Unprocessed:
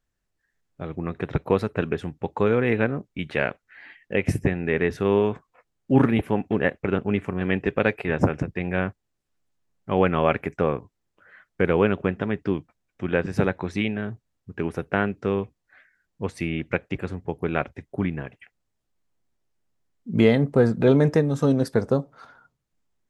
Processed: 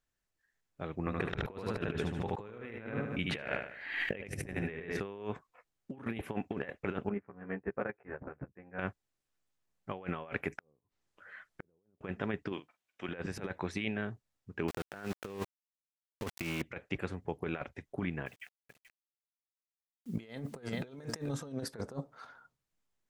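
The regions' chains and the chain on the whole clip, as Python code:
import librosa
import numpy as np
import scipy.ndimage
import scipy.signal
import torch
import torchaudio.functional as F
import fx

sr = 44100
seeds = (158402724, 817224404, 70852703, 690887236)

y = fx.chain(x, sr, fx.low_shelf(hz=100.0, db=8.0),
    fx.echo_feedback(ms=75, feedback_pct=40, wet_db=-4.5),
    fx.pre_swell(db_per_s=69.0), at=(0.99, 5.0))
y = fx.chain(y, sr, fx.lowpass(hz=1700.0, slope=24),
    fx.doubler(ms=15.0, db=-2),
    fx.upward_expand(threshold_db=-29.0, expansion=2.5), at=(7.09, 8.79))
y = fx.chain(y, sr, fx.env_lowpass_down(base_hz=430.0, full_db=-18.5),
    fx.over_compress(threshold_db=-25.0, ratio=-0.5),
    fx.gate_flip(shuts_db=-21.0, range_db=-40), at=(10.51, 12.01))
y = fx.chain(y, sr, fx.highpass(hz=460.0, slope=6),
    fx.peak_eq(hz=3000.0, db=5.5, octaves=0.6),
    fx.doubler(ms=45.0, db=-12.0), at=(12.52, 13.09))
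y = fx.chain(y, sr, fx.leveller(passes=1),
    fx.sample_gate(floor_db=-30.5), at=(14.68, 16.62))
y = fx.chain(y, sr, fx.high_shelf(hz=3100.0, db=9.5),
    fx.echo_single(ms=432, db=-13.5),
    fx.quant_dither(seeds[0], bits=10, dither='none'), at=(18.26, 21.29))
y = fx.low_shelf(y, sr, hz=500.0, db=-6.5)
y = fx.over_compress(y, sr, threshold_db=-29.0, ratio=-0.5)
y = y * librosa.db_to_amplitude(-7.5)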